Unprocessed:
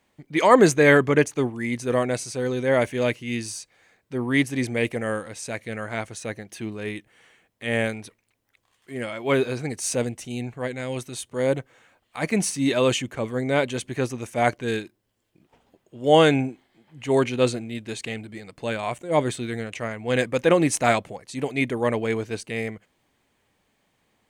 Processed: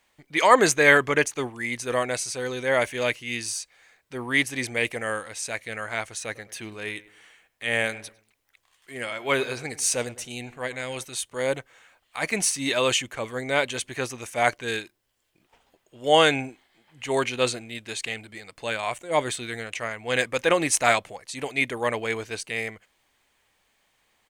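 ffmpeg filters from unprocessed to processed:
-filter_complex "[0:a]asplit=3[a][b][c];[a]afade=t=out:st=6.28:d=0.02[d];[b]asplit=2[e][f];[f]adelay=102,lowpass=f=2k:p=1,volume=-17dB,asplit=2[g][h];[h]adelay=102,lowpass=f=2k:p=1,volume=0.39,asplit=2[i][j];[j]adelay=102,lowpass=f=2k:p=1,volume=0.39[k];[e][g][i][k]amix=inputs=4:normalize=0,afade=t=in:st=6.28:d=0.02,afade=t=out:st=11.03:d=0.02[l];[c]afade=t=in:st=11.03:d=0.02[m];[d][l][m]amix=inputs=3:normalize=0,equalizer=f=180:w=0.36:g=-13.5,volume=4dB"

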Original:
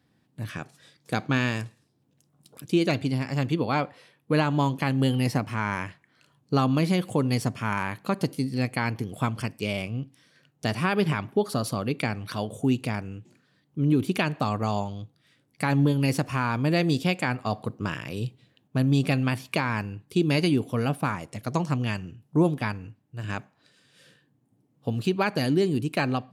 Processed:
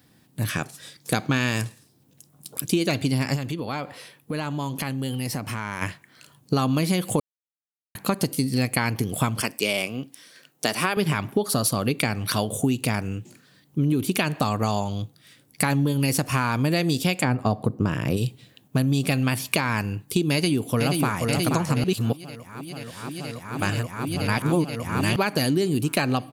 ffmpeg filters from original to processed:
-filter_complex "[0:a]asplit=3[a][b][c];[a]afade=t=out:st=3.35:d=0.02[d];[b]acompressor=threshold=-36dB:ratio=4:attack=3.2:release=140:knee=1:detection=peak,afade=t=in:st=3.35:d=0.02,afade=t=out:st=5.81:d=0.02[e];[c]afade=t=in:st=5.81:d=0.02[f];[d][e][f]amix=inputs=3:normalize=0,asettb=1/sr,asplit=3[g][h][i];[g]atrim=end=9.414[j];[h]atrim=start=9.41:end=10.97,asetpts=PTS-STARTPTS,afade=t=in:d=0.004:c=qsin,afade=t=out:st=1.556:d=0.004:c=qsin,highpass=280[k];[i]atrim=start=10.966[l];[j][k]acrossfade=d=0.004:c1=hsin:c2=qsin[m];[m][l]acrossfade=d=0.004:c1=qsin:c2=hsin,asplit=3[n][o][p];[n]afade=t=out:st=17.23:d=0.02[q];[o]tiltshelf=f=1.2k:g=7.5,afade=t=in:st=17.23:d=0.02,afade=t=out:st=18.16:d=0.02[r];[p]afade=t=in:st=18.16:d=0.02[s];[q][r][s]amix=inputs=3:normalize=0,asplit=2[t][u];[u]afade=t=in:st=20.32:d=0.01,afade=t=out:st=21.24:d=0.01,aecho=0:1:480|960|1440|1920|2400|2880|3360|3840|4320|4800|5280|5760:0.473151|0.354863|0.266148|0.199611|0.149708|0.112281|0.0842108|0.0631581|0.0473686|0.0355264|0.0266448|0.0199836[v];[t][v]amix=inputs=2:normalize=0,asplit=5[w][x][y][z][aa];[w]atrim=end=7.2,asetpts=PTS-STARTPTS,afade=t=out:st=7.196:d=0.004:c=hsin[ab];[x]atrim=start=7.2:end=7.95,asetpts=PTS-STARTPTS,volume=0[ac];[y]atrim=start=7.95:end=21.842,asetpts=PTS-STARTPTS,afade=t=in:d=0.004:c=hsin[ad];[z]atrim=start=21.838:end=25.162,asetpts=PTS-STARTPTS,areverse[ae];[aa]atrim=start=25.158[af];[ab][ac][ad]concat=n=3:v=0:a=1[ag];[ag][ae]acrossfade=d=0.004:c1=hsin:c2=hsin[ah];[ah][af]acrossfade=d=0.004:c1=hsin:c2=hsin,aemphasis=mode=production:type=50kf,acompressor=threshold=-27dB:ratio=6,volume=8dB"

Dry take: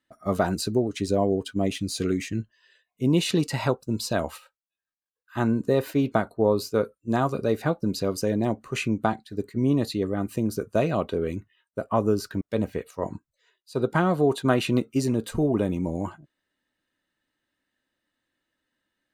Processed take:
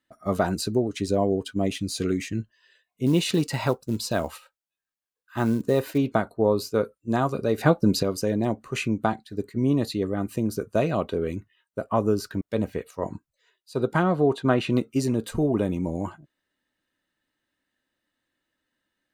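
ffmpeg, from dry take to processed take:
-filter_complex "[0:a]asettb=1/sr,asplit=3[a][b][c];[a]atrim=end=3.064[d];[b]atrim=start=3.06:end=5.98,asetpts=PTS-STARTPTS,afade=t=in:d=0.004:c=qsin,afade=t=out:st=2.916:d=0.004:c=qsin,acrusher=bits=7:mode=log:mix=0:aa=0.000001[e];[c]atrim=start=5.976[f];[d][e]acrossfade=d=0.004:c1=hsin:c2=qsin[g];[g][f]acrossfade=d=0.004:c1=qsin:c2=hsin,asettb=1/sr,asplit=3[h][i][j];[h]atrim=end=14.034[k];[i]atrim=start=14.03:end=14.7,asetpts=PTS-STARTPTS,afade=t=in:d=0.004:c=qsin,afade=t=out:st=0.666:d=0.004:c=qsin,aemphasis=mode=reproduction:type=50fm[l];[j]atrim=start=14.696[m];[k][l]acrossfade=d=0.004:c1=hsin:c2=qsin[n];[n][m]acrossfade=d=0.004:c1=qsin:c2=hsin,asplit=3[o][p][q];[o]atrim=end=7.582[r];[p]atrim=start=7.578:end=8.032,asetpts=PTS-STARTPTS,volume=6dB[s];[q]atrim=start=8.028[t];[r][s]acrossfade=d=0.004:c1=hsin:c2=hsin[u];[u][t]acrossfade=d=0.004:c1=hsin:c2=hsin"

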